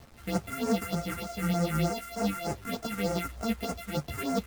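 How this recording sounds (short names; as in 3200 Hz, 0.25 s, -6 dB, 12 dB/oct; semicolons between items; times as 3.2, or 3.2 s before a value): a buzz of ramps at a fixed pitch in blocks of 64 samples; phasing stages 4, 3.3 Hz, lowest notch 610–3500 Hz; a quantiser's noise floor 8-bit, dither none; a shimmering, thickened sound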